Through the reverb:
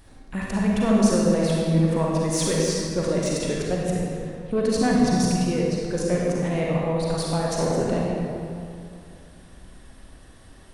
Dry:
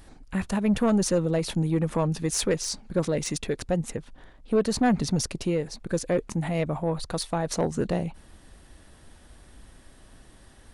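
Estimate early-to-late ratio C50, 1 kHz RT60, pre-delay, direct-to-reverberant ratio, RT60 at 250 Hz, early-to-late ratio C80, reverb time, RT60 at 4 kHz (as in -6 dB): -3.0 dB, 2.4 s, 36 ms, -4.0 dB, 2.7 s, -0.5 dB, 2.5 s, 1.6 s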